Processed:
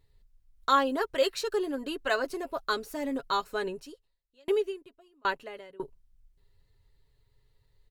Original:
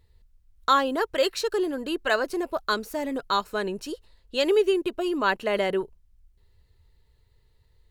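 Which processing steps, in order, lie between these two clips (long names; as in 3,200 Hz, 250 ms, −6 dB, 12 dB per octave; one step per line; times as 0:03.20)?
comb filter 7.3 ms, depth 51%
0:03.71–0:05.80: tremolo with a ramp in dB decaying 1.3 Hz, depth 36 dB
level −5 dB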